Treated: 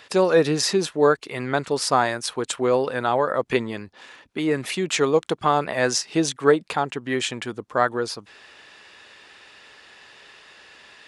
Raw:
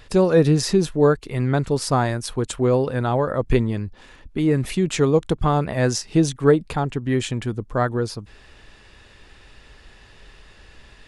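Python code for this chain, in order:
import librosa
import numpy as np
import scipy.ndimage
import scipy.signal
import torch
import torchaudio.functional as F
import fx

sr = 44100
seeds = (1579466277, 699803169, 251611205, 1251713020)

y = fx.weighting(x, sr, curve='A')
y = y * 10.0 ** (3.0 / 20.0)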